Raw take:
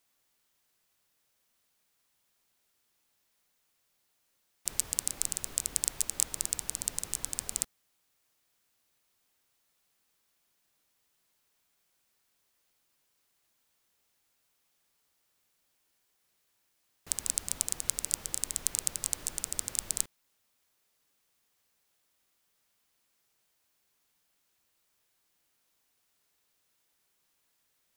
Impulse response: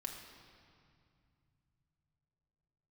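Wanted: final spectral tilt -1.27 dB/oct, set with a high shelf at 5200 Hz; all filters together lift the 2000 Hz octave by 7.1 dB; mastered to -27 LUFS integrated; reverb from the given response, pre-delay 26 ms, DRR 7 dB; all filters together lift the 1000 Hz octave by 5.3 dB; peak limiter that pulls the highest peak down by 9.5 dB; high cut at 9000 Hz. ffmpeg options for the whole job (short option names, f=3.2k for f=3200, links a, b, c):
-filter_complex "[0:a]lowpass=9k,equalizer=f=1k:t=o:g=4.5,equalizer=f=2k:t=o:g=7,highshelf=f=5.2k:g=4.5,alimiter=limit=-9dB:level=0:latency=1,asplit=2[a][b];[1:a]atrim=start_sample=2205,adelay=26[c];[b][c]afir=irnorm=-1:irlink=0,volume=-5.5dB[d];[a][d]amix=inputs=2:normalize=0,volume=8.5dB"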